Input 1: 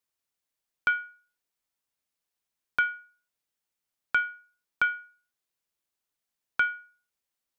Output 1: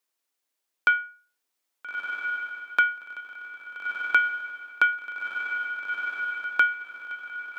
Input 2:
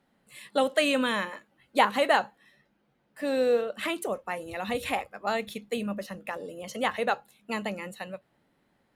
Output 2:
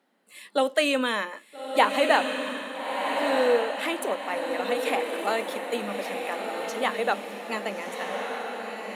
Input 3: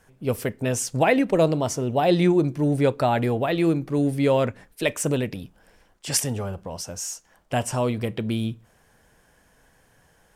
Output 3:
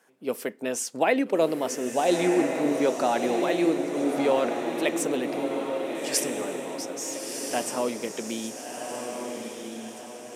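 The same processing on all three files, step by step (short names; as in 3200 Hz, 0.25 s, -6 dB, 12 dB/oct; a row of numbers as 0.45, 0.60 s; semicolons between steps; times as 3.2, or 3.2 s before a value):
HPF 240 Hz 24 dB/oct; on a send: diffused feedback echo 1.321 s, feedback 46%, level -4 dB; on the sum: match loudness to -27 LUFS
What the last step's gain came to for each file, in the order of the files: +4.5, +1.5, -3.0 dB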